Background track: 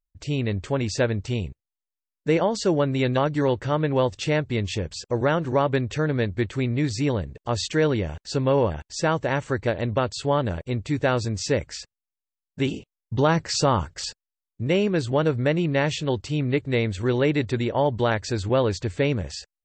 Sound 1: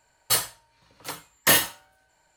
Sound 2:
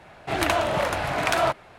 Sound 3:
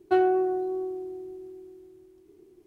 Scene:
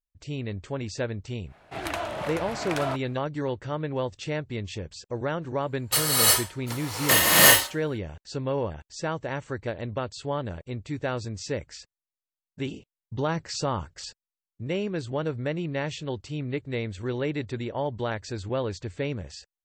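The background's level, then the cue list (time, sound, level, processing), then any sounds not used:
background track -7.5 dB
1.44 add 2 -8.5 dB, fades 0.10 s
5.62 add 1 -2.5 dB + non-linear reverb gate 0.39 s rising, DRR -8 dB
not used: 3

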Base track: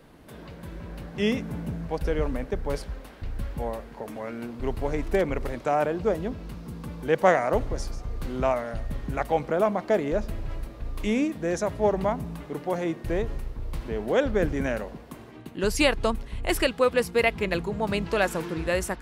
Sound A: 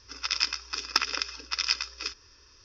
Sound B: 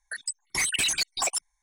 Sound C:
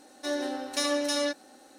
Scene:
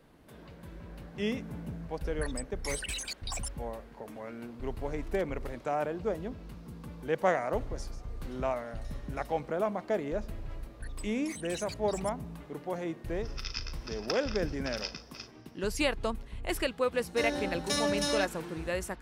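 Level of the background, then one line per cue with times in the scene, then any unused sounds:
base track -7.5 dB
2.1 add B -0.5 dB + compressor, threshold -36 dBFS
8.08 add C -17.5 dB + compressor 5:1, threshold -39 dBFS
10.71 add B -13.5 dB + compressor 1.5:1, threshold -37 dBFS
13.14 add A -12 dB + doubler 38 ms -12 dB
16.93 add C -2.5 dB

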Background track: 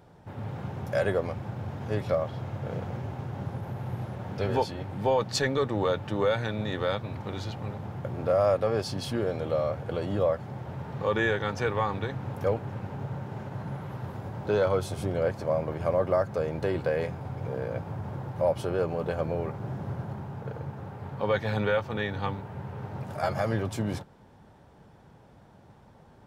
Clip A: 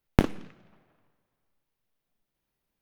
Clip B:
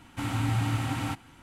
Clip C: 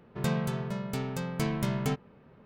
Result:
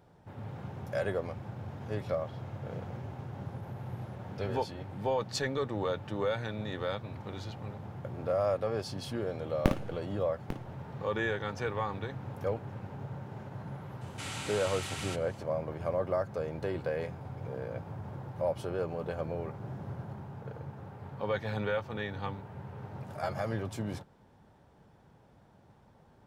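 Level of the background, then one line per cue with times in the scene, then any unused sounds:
background track -6 dB
9.47 add A -6 dB + tapped delay 54/845 ms -8.5/-12 dB
14.01 add B -9 dB + weighting filter ITU-R 468
not used: C

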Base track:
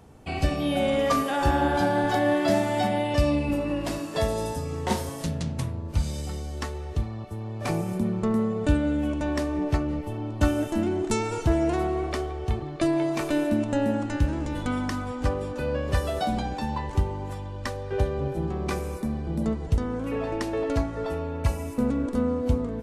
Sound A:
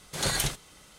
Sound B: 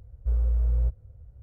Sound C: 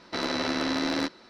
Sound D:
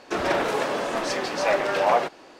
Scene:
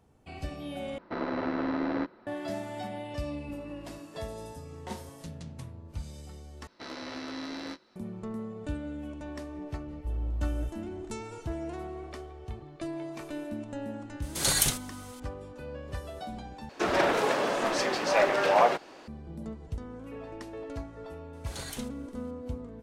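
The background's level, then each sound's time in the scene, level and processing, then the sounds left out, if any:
base track -13 dB
0.98 replace with C -1.5 dB + LPF 1400 Hz
6.67 replace with C -12.5 dB + doubler 19 ms -6 dB
9.79 add B -5.5 dB + limiter -22 dBFS
14.22 add A -2 dB + high shelf 5400 Hz +10 dB
16.69 replace with D -1.5 dB
21.33 add A -13 dB

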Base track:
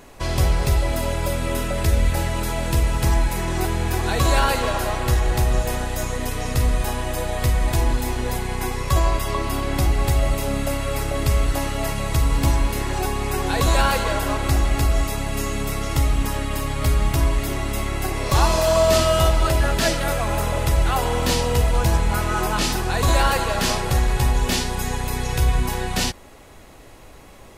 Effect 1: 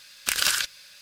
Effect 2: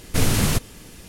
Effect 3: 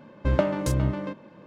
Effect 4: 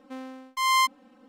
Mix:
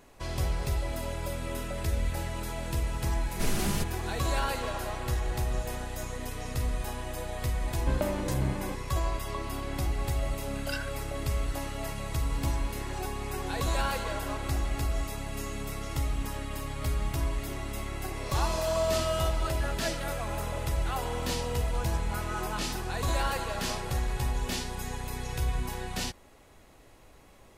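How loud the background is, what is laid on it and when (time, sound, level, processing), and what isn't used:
base track -11 dB
3.25 add 2 -12.5 dB + comb 5 ms, depth 77%
7.62 add 3 -5.5 dB + limiter -13 dBFS
10.27 add 1 -16 dB + spectral expander 4:1
not used: 4

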